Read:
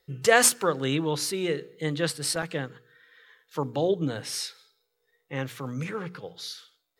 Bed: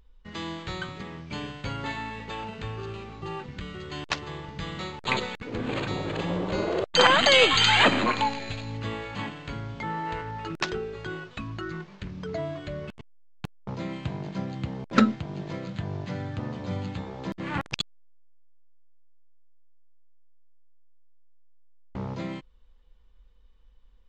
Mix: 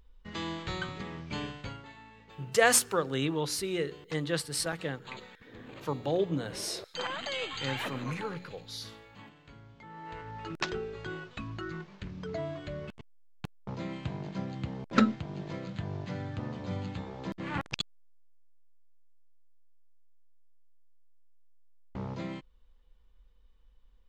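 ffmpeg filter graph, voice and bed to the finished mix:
-filter_complex "[0:a]adelay=2300,volume=0.631[s0];[1:a]volume=3.98,afade=t=out:st=1.43:d=0.42:silence=0.158489,afade=t=in:st=9.89:d=0.72:silence=0.211349[s1];[s0][s1]amix=inputs=2:normalize=0"

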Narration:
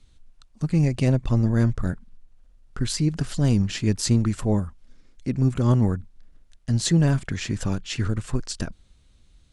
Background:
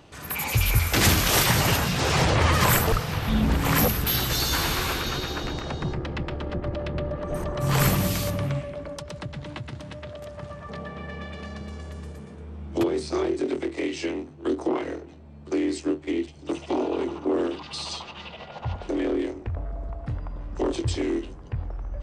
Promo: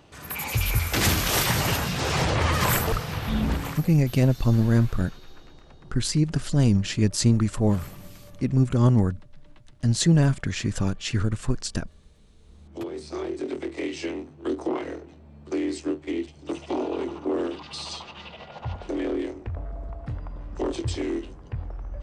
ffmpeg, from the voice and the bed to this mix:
-filter_complex "[0:a]adelay=3150,volume=1.06[s0];[1:a]volume=6.68,afade=t=out:st=3.52:d=0.27:silence=0.11885,afade=t=in:st=12.35:d=1.48:silence=0.112202[s1];[s0][s1]amix=inputs=2:normalize=0"

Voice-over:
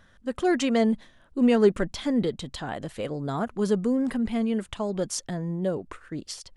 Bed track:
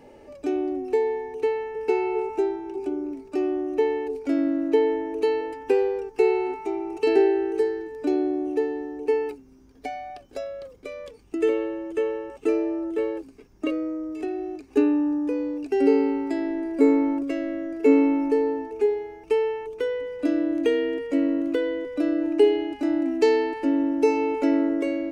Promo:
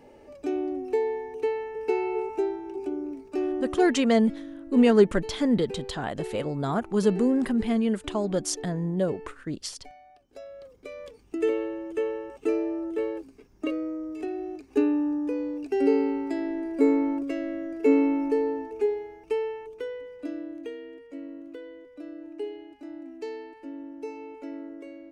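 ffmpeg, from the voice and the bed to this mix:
-filter_complex "[0:a]adelay=3350,volume=1.19[s0];[1:a]volume=3.35,afade=t=out:st=3.65:d=0.24:silence=0.211349,afade=t=in:st=10.19:d=0.85:silence=0.211349,afade=t=out:st=18.74:d=2.03:silence=0.199526[s1];[s0][s1]amix=inputs=2:normalize=0"

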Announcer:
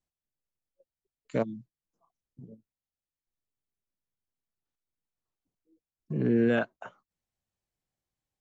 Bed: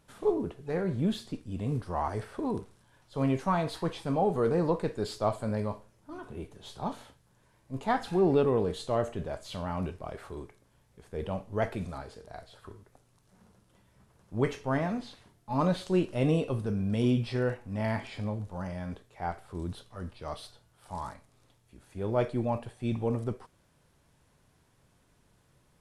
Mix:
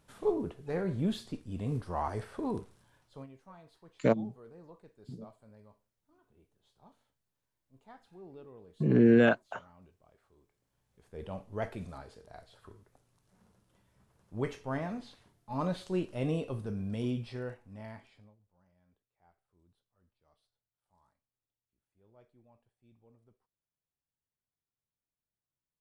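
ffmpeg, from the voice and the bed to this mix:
-filter_complex "[0:a]adelay=2700,volume=1.41[s0];[1:a]volume=7.5,afade=t=out:st=2.86:d=0.41:silence=0.0668344,afade=t=in:st=10.46:d=0.95:silence=0.1,afade=t=out:st=16.81:d=1.55:silence=0.0398107[s1];[s0][s1]amix=inputs=2:normalize=0"

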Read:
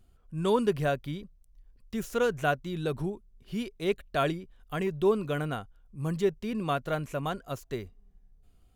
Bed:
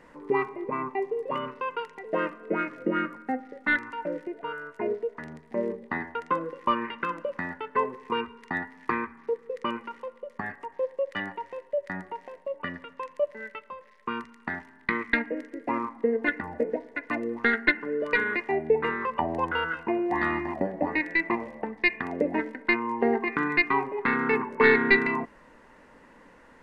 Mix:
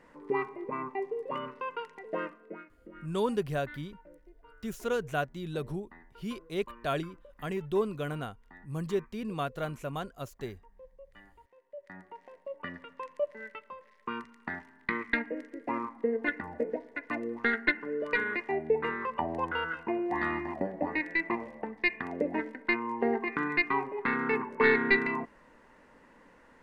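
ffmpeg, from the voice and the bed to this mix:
-filter_complex "[0:a]adelay=2700,volume=0.631[s0];[1:a]volume=5.01,afade=t=out:st=2.05:d=0.6:silence=0.11885,afade=t=in:st=11.56:d=1.33:silence=0.112202[s1];[s0][s1]amix=inputs=2:normalize=0"

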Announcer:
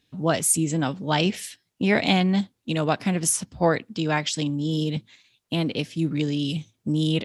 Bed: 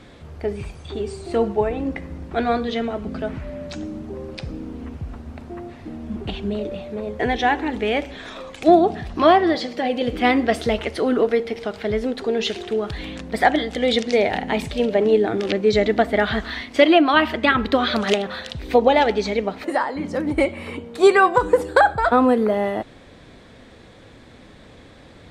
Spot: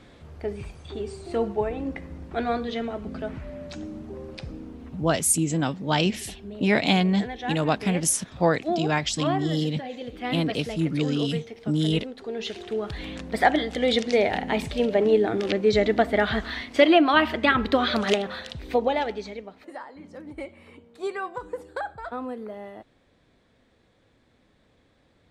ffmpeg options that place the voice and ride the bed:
-filter_complex "[0:a]adelay=4800,volume=0.944[s0];[1:a]volume=1.78,afade=t=out:st=4.41:d=0.86:silence=0.398107,afade=t=in:st=12.15:d=1.01:silence=0.298538,afade=t=out:st=18.13:d=1.34:silence=0.188365[s1];[s0][s1]amix=inputs=2:normalize=0"

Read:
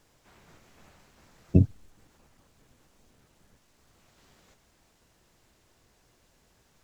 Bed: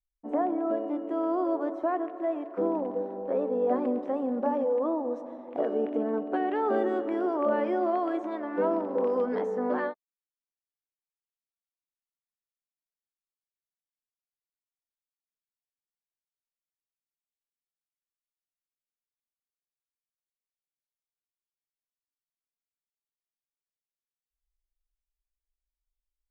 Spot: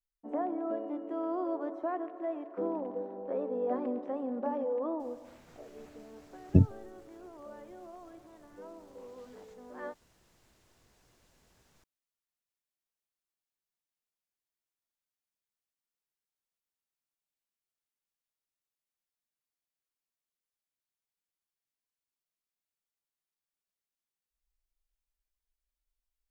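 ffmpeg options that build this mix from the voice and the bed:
-filter_complex "[0:a]adelay=5000,volume=0.794[s0];[1:a]volume=6.31,afade=t=out:st=4.94:d=0.52:silence=0.158489,afade=t=in:st=9.74:d=0.41:silence=0.0794328[s1];[s0][s1]amix=inputs=2:normalize=0"

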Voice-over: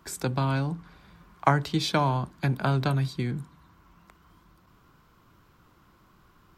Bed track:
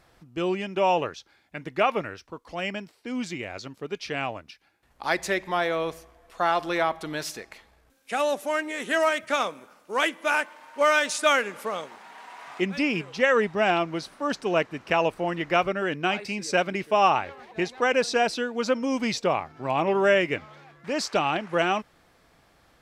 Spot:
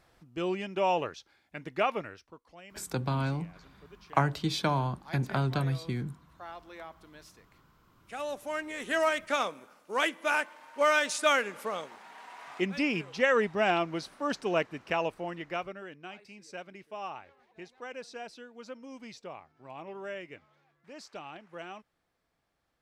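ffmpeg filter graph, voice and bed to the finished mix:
-filter_complex "[0:a]adelay=2700,volume=0.631[s0];[1:a]volume=3.98,afade=t=out:st=1.8:d=0.83:silence=0.158489,afade=t=in:st=7.81:d=1.27:silence=0.141254,afade=t=out:st=14.44:d=1.51:silence=0.16788[s1];[s0][s1]amix=inputs=2:normalize=0"

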